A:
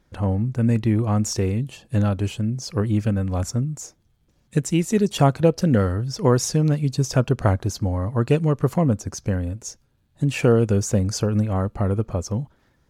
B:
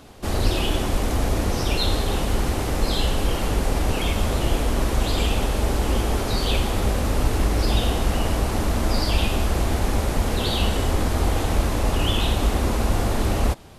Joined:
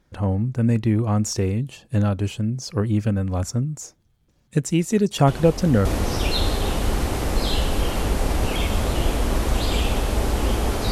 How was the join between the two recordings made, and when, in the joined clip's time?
A
5.27 add B from 0.73 s 0.58 s -9 dB
5.85 switch to B from 1.31 s

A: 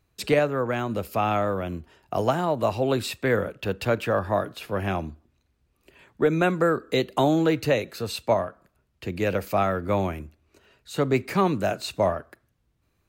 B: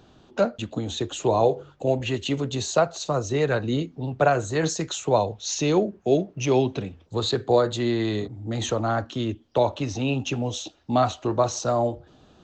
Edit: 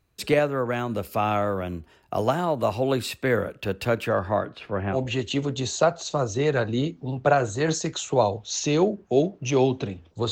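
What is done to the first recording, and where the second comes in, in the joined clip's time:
A
4.08–4.99 LPF 8600 Hz -> 1500 Hz
4.95 switch to B from 1.9 s, crossfade 0.08 s

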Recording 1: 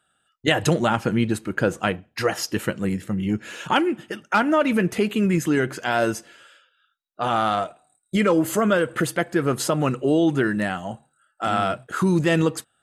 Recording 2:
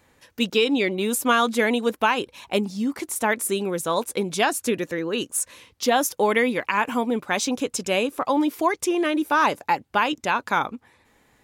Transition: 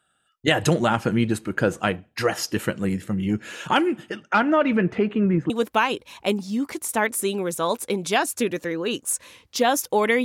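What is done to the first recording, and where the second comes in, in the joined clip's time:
recording 1
4.09–5.5 LPF 6600 Hz -> 1100 Hz
5.5 switch to recording 2 from 1.77 s

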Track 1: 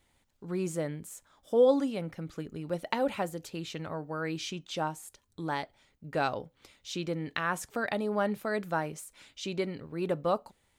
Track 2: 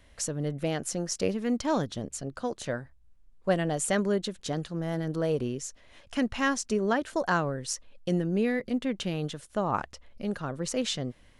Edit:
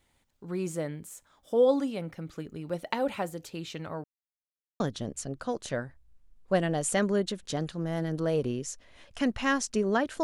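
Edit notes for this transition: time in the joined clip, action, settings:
track 1
4.04–4.8 mute
4.8 switch to track 2 from 1.76 s

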